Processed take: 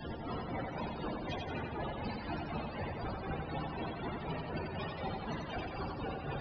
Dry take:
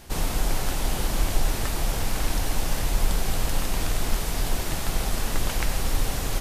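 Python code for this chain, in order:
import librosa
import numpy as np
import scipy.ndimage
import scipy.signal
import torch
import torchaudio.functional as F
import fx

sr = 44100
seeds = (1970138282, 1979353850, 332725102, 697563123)

y = fx.cvsd(x, sr, bps=32000)
y = fx.dereverb_blind(y, sr, rt60_s=0.83)
y = scipy.signal.sosfilt(scipy.signal.butter(2, 110.0, 'highpass', fs=sr, output='sos'), y)
y = fx.tube_stage(y, sr, drive_db=51.0, bias=0.8)
y = fx.tremolo_shape(y, sr, shape='triangle', hz=4.0, depth_pct=95)
y = fx.spec_topn(y, sr, count=32)
y = fx.wow_flutter(y, sr, seeds[0], rate_hz=2.1, depth_cents=26.0)
y = fx.doubler(y, sr, ms=13.0, db=-13)
y = fx.echo_feedback(y, sr, ms=89, feedback_pct=52, wet_db=-3.0)
y = F.gain(torch.from_numpy(y), 17.5).numpy()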